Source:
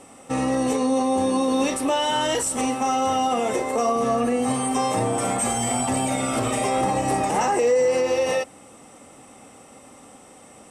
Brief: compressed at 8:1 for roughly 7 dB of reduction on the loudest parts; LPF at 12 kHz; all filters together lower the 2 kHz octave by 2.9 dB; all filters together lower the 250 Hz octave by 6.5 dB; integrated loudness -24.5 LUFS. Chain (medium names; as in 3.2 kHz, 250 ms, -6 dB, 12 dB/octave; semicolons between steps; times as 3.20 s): low-pass 12 kHz; peaking EQ 250 Hz -7 dB; peaking EQ 2 kHz -3.5 dB; compression 8:1, threshold -25 dBFS; trim +4 dB